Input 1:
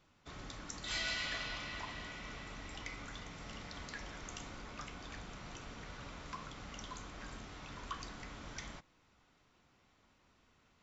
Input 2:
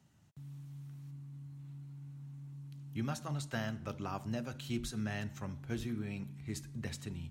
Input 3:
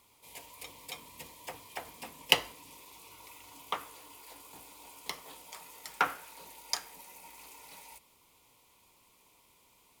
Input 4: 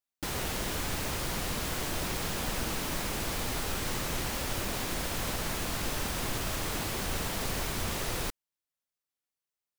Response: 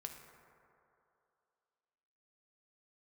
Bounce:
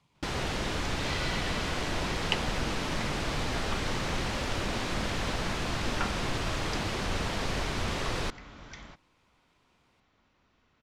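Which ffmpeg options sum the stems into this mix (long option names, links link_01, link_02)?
-filter_complex "[0:a]adelay=150,volume=1dB[link_01];[1:a]volume=-5dB[link_02];[2:a]volume=-6.5dB[link_03];[3:a]volume=2.5dB[link_04];[link_01][link_02][link_03][link_04]amix=inputs=4:normalize=0,lowpass=5000"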